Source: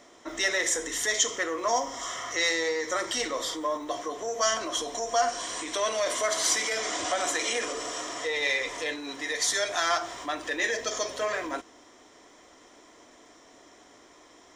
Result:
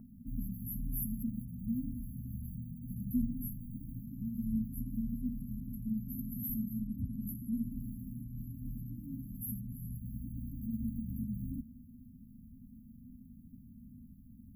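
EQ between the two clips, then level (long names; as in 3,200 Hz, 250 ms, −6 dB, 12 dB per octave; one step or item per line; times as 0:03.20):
linear-phase brick-wall band-stop 250–11,000 Hz
Butterworth band-reject 3,600 Hz, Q 0.58
tilt shelving filter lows +4 dB
+14.0 dB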